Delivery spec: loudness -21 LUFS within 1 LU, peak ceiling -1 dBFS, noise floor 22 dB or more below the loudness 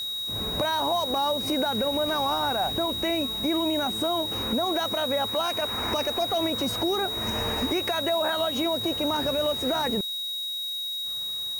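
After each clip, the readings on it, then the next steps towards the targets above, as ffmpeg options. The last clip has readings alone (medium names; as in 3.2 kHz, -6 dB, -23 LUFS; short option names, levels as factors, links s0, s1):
steady tone 3.8 kHz; tone level -29 dBFS; noise floor -32 dBFS; noise floor target -48 dBFS; loudness -25.5 LUFS; peak level -16.0 dBFS; loudness target -21.0 LUFS
-> -af "bandreject=f=3800:w=30"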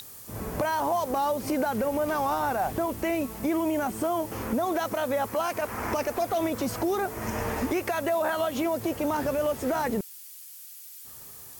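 steady tone not found; noise floor -45 dBFS; noise floor target -50 dBFS
-> -af "afftdn=nr=6:nf=-45"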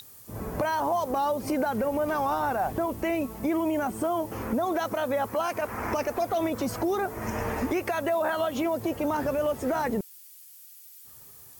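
noise floor -50 dBFS; noise floor target -51 dBFS
-> -af "afftdn=nr=6:nf=-50"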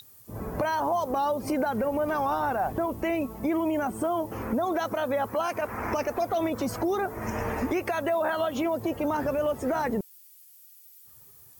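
noise floor -53 dBFS; loudness -28.5 LUFS; peak level -18.0 dBFS; loudness target -21.0 LUFS
-> -af "volume=2.37"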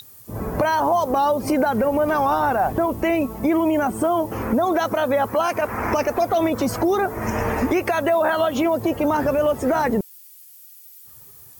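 loudness -21.0 LUFS; peak level -10.5 dBFS; noise floor -46 dBFS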